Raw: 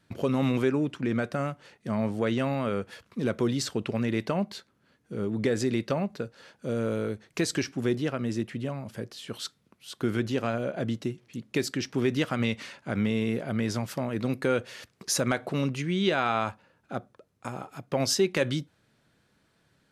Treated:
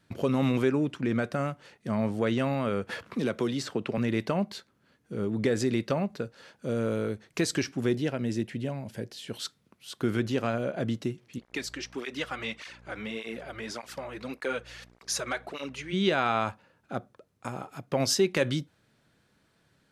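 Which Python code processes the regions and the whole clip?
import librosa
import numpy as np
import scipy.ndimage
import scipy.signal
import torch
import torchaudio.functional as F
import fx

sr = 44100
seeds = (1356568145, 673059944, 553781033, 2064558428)

y = fx.chain(x, sr, fx.highpass(hz=190.0, slope=6),
    fx.high_shelf(hz=4200.0, db=-5.5),
    fx.band_squash(depth_pct=70), at=(2.89, 3.98))
y = fx.chain(y, sr, fx.quant_float(bits=8),
    fx.peak_eq(hz=1200.0, db=-12.0, octaves=0.26), at=(7.94, 9.4))
y = fx.weighting(y, sr, curve='A', at=(11.38, 15.92), fade=0.02)
y = fx.dmg_buzz(y, sr, base_hz=60.0, harmonics=39, level_db=-51.0, tilt_db=-7, odd_only=False, at=(11.38, 15.92), fade=0.02)
y = fx.flanger_cancel(y, sr, hz=1.7, depth_ms=5.1, at=(11.38, 15.92), fade=0.02)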